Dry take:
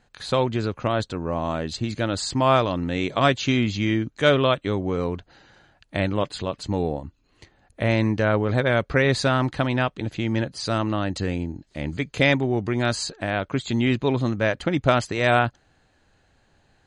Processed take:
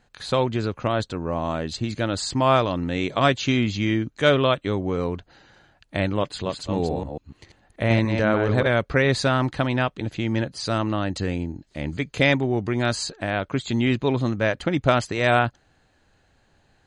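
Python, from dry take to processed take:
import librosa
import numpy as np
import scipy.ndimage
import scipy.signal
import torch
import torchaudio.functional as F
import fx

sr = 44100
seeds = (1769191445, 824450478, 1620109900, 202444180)

y = fx.reverse_delay(x, sr, ms=145, wet_db=-5, at=(6.31, 8.67))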